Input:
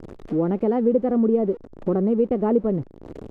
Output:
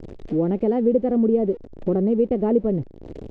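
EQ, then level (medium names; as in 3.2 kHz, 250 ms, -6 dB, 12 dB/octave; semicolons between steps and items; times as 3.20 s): distance through air 74 m; peaking EQ 220 Hz -4 dB 2.2 oct; peaking EQ 1.2 kHz -11.5 dB 1.3 oct; +5.0 dB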